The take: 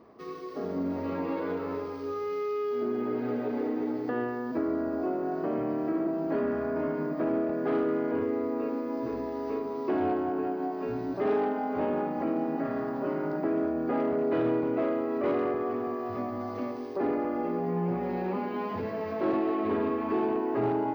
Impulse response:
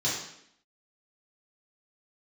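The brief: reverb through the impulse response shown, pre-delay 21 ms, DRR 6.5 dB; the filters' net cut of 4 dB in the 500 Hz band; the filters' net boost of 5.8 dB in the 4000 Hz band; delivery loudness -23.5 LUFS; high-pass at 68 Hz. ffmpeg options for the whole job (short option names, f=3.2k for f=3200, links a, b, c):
-filter_complex "[0:a]highpass=68,equalizer=f=500:t=o:g=-5.5,equalizer=f=4k:t=o:g=8,asplit=2[a][b];[1:a]atrim=start_sample=2205,adelay=21[c];[b][c]afir=irnorm=-1:irlink=0,volume=-16dB[d];[a][d]amix=inputs=2:normalize=0,volume=9dB"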